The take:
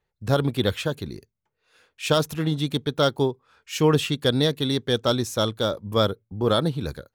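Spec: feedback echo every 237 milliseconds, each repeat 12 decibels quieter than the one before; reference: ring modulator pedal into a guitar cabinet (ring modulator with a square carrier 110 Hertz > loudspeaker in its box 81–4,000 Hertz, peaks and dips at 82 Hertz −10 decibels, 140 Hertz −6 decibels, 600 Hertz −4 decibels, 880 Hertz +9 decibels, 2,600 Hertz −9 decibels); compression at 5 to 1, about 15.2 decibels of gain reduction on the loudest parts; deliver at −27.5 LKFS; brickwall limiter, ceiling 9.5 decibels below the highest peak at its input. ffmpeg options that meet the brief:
ffmpeg -i in.wav -af "acompressor=threshold=-33dB:ratio=5,alimiter=level_in=6dB:limit=-24dB:level=0:latency=1,volume=-6dB,aecho=1:1:237|474|711:0.251|0.0628|0.0157,aeval=exprs='val(0)*sgn(sin(2*PI*110*n/s))':channel_layout=same,highpass=81,equalizer=frequency=82:width_type=q:width=4:gain=-10,equalizer=frequency=140:width_type=q:width=4:gain=-6,equalizer=frequency=600:width_type=q:width=4:gain=-4,equalizer=frequency=880:width_type=q:width=4:gain=9,equalizer=frequency=2600:width_type=q:width=4:gain=-9,lowpass=frequency=4000:width=0.5412,lowpass=frequency=4000:width=1.3066,volume=14.5dB" out.wav

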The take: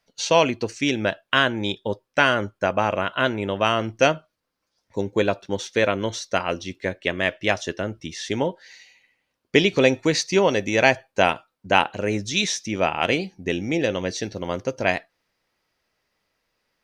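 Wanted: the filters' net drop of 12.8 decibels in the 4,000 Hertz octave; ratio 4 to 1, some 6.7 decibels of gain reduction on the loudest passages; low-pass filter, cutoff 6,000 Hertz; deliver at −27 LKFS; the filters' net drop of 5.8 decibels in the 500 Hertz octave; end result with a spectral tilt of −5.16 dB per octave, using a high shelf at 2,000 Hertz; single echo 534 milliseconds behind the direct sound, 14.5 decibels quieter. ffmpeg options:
ffmpeg -i in.wav -af "lowpass=6000,equalizer=frequency=500:width_type=o:gain=-6.5,highshelf=frequency=2000:gain=-8.5,equalizer=frequency=4000:width_type=o:gain=-9,acompressor=threshold=-24dB:ratio=4,aecho=1:1:534:0.188,volume=4dB" out.wav

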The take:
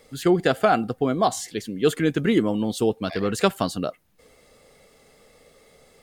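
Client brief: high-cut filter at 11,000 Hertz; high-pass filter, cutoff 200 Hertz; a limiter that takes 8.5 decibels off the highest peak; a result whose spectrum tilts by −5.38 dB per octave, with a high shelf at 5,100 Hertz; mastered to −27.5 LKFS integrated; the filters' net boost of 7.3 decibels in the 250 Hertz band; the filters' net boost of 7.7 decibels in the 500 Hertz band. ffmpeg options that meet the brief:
ffmpeg -i in.wav -af "highpass=200,lowpass=11000,equalizer=frequency=250:width_type=o:gain=9,equalizer=frequency=500:width_type=o:gain=7,highshelf=frequency=5100:gain=5.5,volume=-7dB,alimiter=limit=-16dB:level=0:latency=1" out.wav

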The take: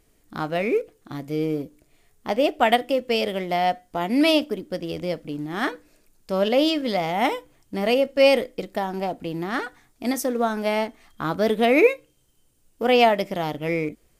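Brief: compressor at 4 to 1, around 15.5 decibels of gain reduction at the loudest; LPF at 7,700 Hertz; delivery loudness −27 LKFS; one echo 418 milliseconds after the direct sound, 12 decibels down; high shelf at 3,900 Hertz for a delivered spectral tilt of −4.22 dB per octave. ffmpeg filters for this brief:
ffmpeg -i in.wav -af "lowpass=7700,highshelf=frequency=3900:gain=-3.5,acompressor=threshold=-31dB:ratio=4,aecho=1:1:418:0.251,volume=7dB" out.wav

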